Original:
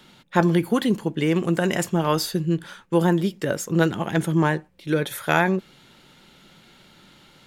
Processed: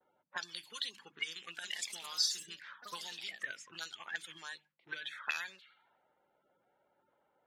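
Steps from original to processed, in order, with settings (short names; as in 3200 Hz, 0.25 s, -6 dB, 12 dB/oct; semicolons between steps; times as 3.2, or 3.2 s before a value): bin magnitudes rounded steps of 30 dB; gate with hold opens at -45 dBFS; low-pass opened by the level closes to 1100 Hz, open at -19.5 dBFS; passive tone stack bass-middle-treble 5-5-5; notches 50/100/150/200/250/300 Hz; auto-wah 580–4400 Hz, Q 2.3, up, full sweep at -34 dBFS; 1.47–3.61 echoes that change speed 0.162 s, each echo +3 st, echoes 3, each echo -6 dB; gain +6.5 dB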